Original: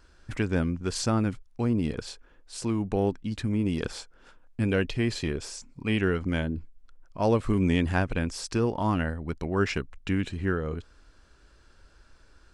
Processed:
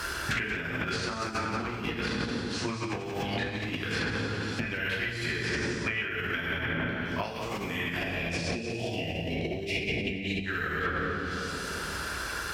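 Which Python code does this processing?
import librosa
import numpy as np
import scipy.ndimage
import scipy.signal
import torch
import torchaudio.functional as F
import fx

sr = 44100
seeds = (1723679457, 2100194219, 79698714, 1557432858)

y = fx.octave_divider(x, sr, octaves=1, level_db=-3.0)
y = fx.cheby1_bandstop(y, sr, low_hz=680.0, high_hz=2400.0, order=3, at=(7.94, 10.44), fade=0.02)
y = np.repeat(y[::3], 3)[:len(y)]
y = scipy.signal.sosfilt(scipy.signal.butter(2, 68.0, 'highpass', fs=sr, output='sos'), y)
y = fx.rev_plate(y, sr, seeds[0], rt60_s=2.0, hf_ratio=0.7, predelay_ms=0, drr_db=-8.5)
y = fx.dynamic_eq(y, sr, hz=1900.0, q=0.92, threshold_db=-39.0, ratio=4.0, max_db=7)
y = fx.over_compress(y, sr, threshold_db=-27.0, ratio=-1.0)
y = fx.env_lowpass_down(y, sr, base_hz=2200.0, full_db=-20.0)
y = fx.tilt_shelf(y, sr, db=-8.0, hz=940.0)
y = y + 10.0 ** (-12.0 / 20.0) * np.pad(y, (int(178 * sr / 1000.0), 0))[:len(y)]
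y = fx.band_squash(y, sr, depth_pct=100)
y = F.gain(torch.from_numpy(y), -3.0).numpy()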